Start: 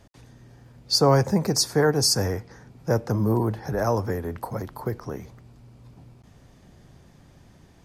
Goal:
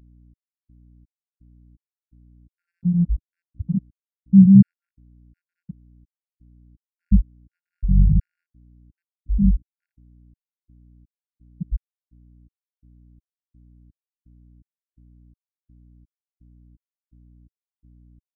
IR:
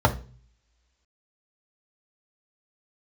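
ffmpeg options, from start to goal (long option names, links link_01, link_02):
-filter_complex "[0:a]highpass=85,acrossover=split=660[link_01][link_02];[link_01]adelay=90[link_03];[link_03][link_02]amix=inputs=2:normalize=0,asplit=2[link_04][link_05];[1:a]atrim=start_sample=2205,asetrate=22050,aresample=44100,lowpass=4900[link_06];[link_05][link_06]afir=irnorm=-1:irlink=0,volume=-19.5dB[link_07];[link_04][link_07]amix=inputs=2:normalize=0,asetrate=18846,aresample=44100,lowshelf=frequency=200:gain=5,afftfilt=real='re*gte(hypot(re,im),2.82)':imag='im*gte(hypot(re,im),2.82)':win_size=1024:overlap=0.75,adynamicequalizer=threshold=0.0447:dfrequency=290:dqfactor=3.6:tfrequency=290:tqfactor=3.6:attack=5:release=100:ratio=0.375:range=1.5:mode=cutabove:tftype=bell,aeval=exprs='val(0)+0.00501*(sin(2*PI*60*n/s)+sin(2*PI*2*60*n/s)/2+sin(2*PI*3*60*n/s)/3+sin(2*PI*4*60*n/s)/4+sin(2*PI*5*60*n/s)/5)':channel_layout=same,afftfilt=real='re*gt(sin(2*PI*1.4*pts/sr)*(1-2*mod(floor(b*sr/1024/1400),2)),0)':imag='im*gt(sin(2*PI*1.4*pts/sr)*(1-2*mod(floor(b*sr/1024/1400),2)),0)':win_size=1024:overlap=0.75,volume=-3.5dB"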